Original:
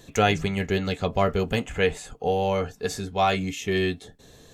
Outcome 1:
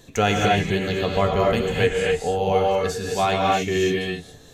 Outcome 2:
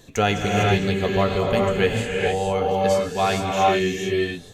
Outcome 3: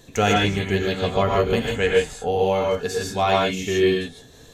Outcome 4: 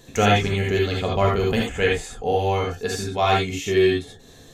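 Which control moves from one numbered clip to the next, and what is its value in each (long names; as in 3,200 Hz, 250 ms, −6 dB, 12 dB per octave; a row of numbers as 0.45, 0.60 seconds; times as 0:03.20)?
reverb whose tail is shaped and stops, gate: 300, 480, 180, 100 milliseconds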